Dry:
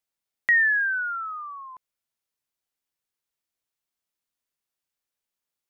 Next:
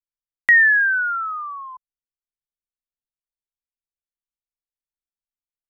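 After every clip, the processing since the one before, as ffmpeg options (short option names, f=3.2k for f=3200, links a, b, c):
-af "anlmdn=1,volume=6.5dB"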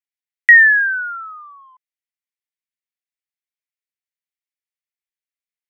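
-af "highpass=f=2k:t=q:w=3,volume=-2.5dB"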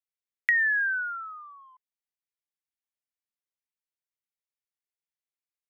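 -af "acompressor=threshold=-16dB:ratio=4,volume=-7dB"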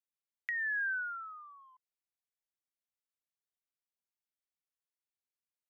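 -af "alimiter=limit=-18dB:level=0:latency=1:release=421,volume=-6.5dB"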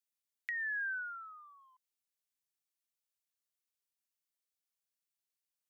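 -af "highshelf=f=2.3k:g=11.5,volume=-7dB"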